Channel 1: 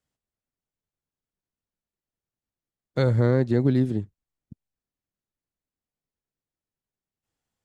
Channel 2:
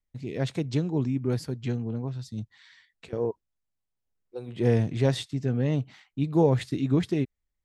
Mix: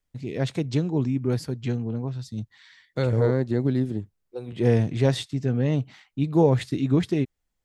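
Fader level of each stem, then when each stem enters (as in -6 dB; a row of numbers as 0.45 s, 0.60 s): -2.5 dB, +2.5 dB; 0.00 s, 0.00 s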